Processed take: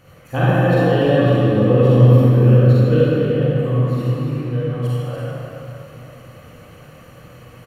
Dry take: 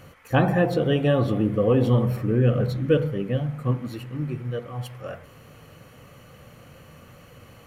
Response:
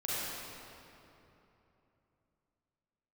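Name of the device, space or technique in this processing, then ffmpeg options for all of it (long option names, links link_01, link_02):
cave: -filter_complex "[0:a]aecho=1:1:288:0.398[link_01];[1:a]atrim=start_sample=2205[link_02];[link_01][link_02]afir=irnorm=-1:irlink=0,volume=-1dB"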